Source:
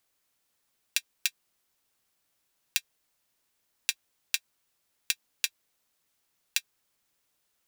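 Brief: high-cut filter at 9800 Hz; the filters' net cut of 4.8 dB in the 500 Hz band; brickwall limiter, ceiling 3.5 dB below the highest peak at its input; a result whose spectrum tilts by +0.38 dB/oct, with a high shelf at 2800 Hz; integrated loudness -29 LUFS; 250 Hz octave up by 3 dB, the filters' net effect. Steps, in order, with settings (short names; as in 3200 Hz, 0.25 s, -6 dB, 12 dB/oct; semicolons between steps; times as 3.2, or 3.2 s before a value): LPF 9800 Hz; bell 250 Hz +6 dB; bell 500 Hz -7 dB; high shelf 2800 Hz +5 dB; gain +5 dB; limiter -0.5 dBFS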